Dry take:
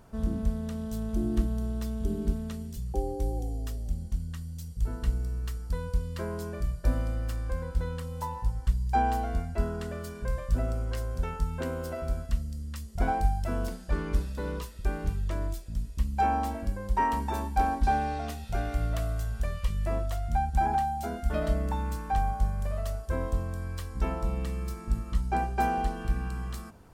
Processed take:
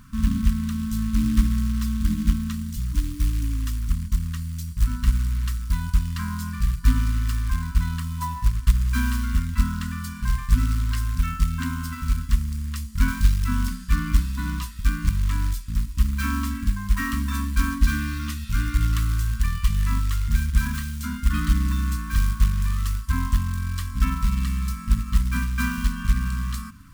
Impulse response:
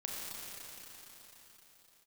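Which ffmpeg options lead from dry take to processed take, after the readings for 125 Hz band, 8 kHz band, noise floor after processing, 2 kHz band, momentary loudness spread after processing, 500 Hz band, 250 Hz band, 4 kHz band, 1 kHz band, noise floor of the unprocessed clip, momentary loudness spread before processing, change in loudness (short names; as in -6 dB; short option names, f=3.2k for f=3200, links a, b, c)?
+8.0 dB, +11.5 dB, -35 dBFS, +8.5 dB, 6 LU, under -25 dB, +7.5 dB, +11.0 dB, -6.0 dB, -41 dBFS, 8 LU, +6.5 dB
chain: -af "acrusher=bits=5:mode=log:mix=0:aa=0.000001,afftfilt=real='re*(1-between(b*sr/4096,300,990))':imag='im*(1-between(b*sr/4096,300,990))':win_size=4096:overlap=0.75,volume=8dB"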